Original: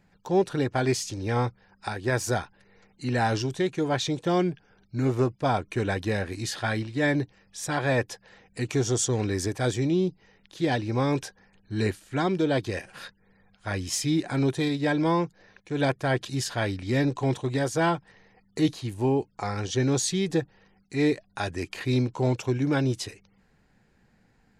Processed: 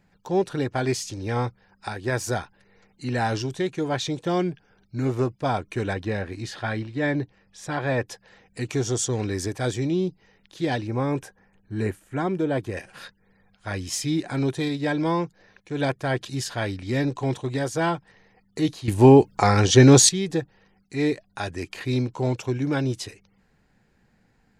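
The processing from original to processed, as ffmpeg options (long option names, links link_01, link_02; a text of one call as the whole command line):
ffmpeg -i in.wav -filter_complex "[0:a]asettb=1/sr,asplit=3[link_01][link_02][link_03];[link_01]atrim=end=5.934[link_04];[link_02]atrim=start=5.93:end=8.07,asetpts=PTS-STARTPTS,afade=type=in:duration=0.004:curve=qsin,afade=type=out:start_time=2.136:duration=0.004:curve=qsin,aemphasis=mode=reproduction:type=50kf[link_05];[link_03]atrim=start=8.066[link_06];[link_04][link_05]acrossfade=duration=0.004:curve1=hsin:curve2=qsin[link_07];[link_07][link_06]acrossfade=duration=0.004:curve1=qsin:curve2=hsin,asettb=1/sr,asplit=3[link_08][link_09][link_10];[link_08]atrim=end=10.874[link_11];[link_09]atrim=start=10.87:end=12.77,asetpts=PTS-STARTPTS,afade=type=in:duration=0.004:curve=qsin,afade=type=out:start_time=1.896:duration=0.004:curve=qsin,equalizer=frequency=4400:width_type=o:width=1.2:gain=-12[link_12];[link_10]atrim=start=12.766[link_13];[link_11][link_12]acrossfade=duration=0.004:curve1=hsin:curve2=qsin[link_14];[link_14][link_13]acrossfade=duration=0.004:curve1=qsin:curve2=hsin,asplit=3[link_15][link_16][link_17];[link_15]atrim=end=18.882[link_18];[link_16]atrim=start=18.878:end=20.092,asetpts=PTS-STARTPTS,volume=12dB[link_19];[link_17]atrim=start=20.088[link_20];[link_18][link_19]acrossfade=duration=0.004:curve1=hsin:curve2=hsin[link_21];[link_21][link_20]acrossfade=duration=0.004:curve1=hsin:curve2=hsin" out.wav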